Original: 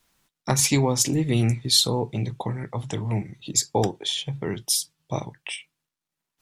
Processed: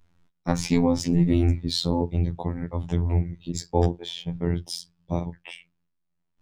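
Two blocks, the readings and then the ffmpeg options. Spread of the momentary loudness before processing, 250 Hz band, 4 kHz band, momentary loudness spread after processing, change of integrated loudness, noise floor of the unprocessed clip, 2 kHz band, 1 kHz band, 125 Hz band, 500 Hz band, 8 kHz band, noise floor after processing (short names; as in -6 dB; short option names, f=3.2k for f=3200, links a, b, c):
13 LU, +3.0 dB, -8.5 dB, 13 LU, -2.0 dB, under -85 dBFS, -6.0 dB, -2.5 dB, +0.5 dB, -0.5 dB, -15.0 dB, -76 dBFS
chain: -filter_complex "[0:a]aemphasis=mode=reproduction:type=riaa,acrossover=split=440|4200[a][b][c];[c]acrusher=bits=5:mode=log:mix=0:aa=0.000001[d];[a][b][d]amix=inputs=3:normalize=0,afftfilt=real='hypot(re,im)*cos(PI*b)':imag='0':win_size=2048:overlap=0.75,adynamicequalizer=threshold=0.00251:dfrequency=5000:dqfactor=6.3:tfrequency=5000:tqfactor=6.3:attack=5:release=100:ratio=0.375:range=3:mode=boostabove:tftype=bell"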